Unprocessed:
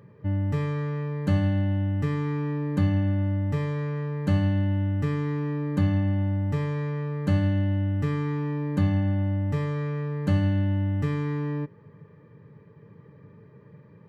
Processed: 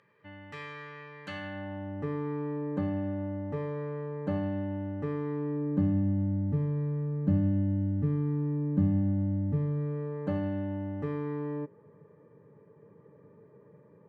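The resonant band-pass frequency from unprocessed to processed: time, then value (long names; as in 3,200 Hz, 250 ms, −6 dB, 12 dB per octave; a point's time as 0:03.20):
resonant band-pass, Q 0.89
0:01.29 2,500 Hz
0:01.63 1,100 Hz
0:02.08 530 Hz
0:05.28 530 Hz
0:06.05 210 Hz
0:09.77 210 Hz
0:10.17 530 Hz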